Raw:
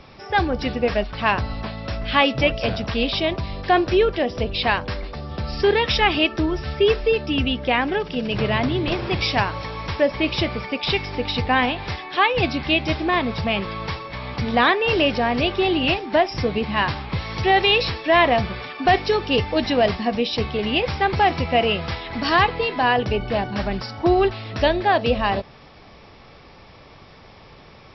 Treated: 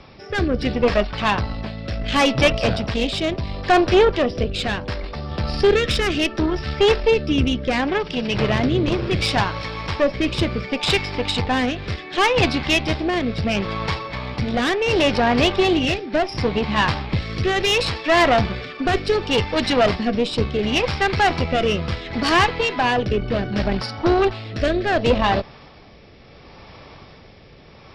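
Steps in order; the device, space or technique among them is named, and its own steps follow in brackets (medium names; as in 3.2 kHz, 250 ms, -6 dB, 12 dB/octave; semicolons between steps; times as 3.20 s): overdriven rotary cabinet (valve stage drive 16 dB, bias 0.7; rotary cabinet horn 0.7 Hz); trim +8 dB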